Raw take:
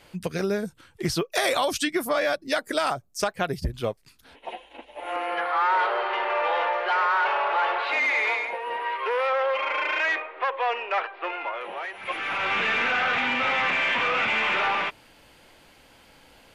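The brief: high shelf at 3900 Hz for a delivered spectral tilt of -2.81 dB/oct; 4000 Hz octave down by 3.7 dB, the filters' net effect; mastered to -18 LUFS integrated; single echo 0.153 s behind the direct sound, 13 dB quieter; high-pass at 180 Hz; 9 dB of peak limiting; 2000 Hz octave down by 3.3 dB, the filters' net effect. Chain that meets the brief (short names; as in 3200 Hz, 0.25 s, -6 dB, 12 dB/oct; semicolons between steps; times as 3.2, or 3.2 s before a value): HPF 180 Hz; bell 2000 Hz -3.5 dB; high shelf 3900 Hz +3 dB; bell 4000 Hz -5.5 dB; limiter -20 dBFS; echo 0.153 s -13 dB; gain +10.5 dB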